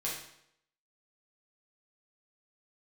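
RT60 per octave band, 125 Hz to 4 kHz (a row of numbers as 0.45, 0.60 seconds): 0.70, 0.70, 0.75, 0.70, 0.70, 0.65 seconds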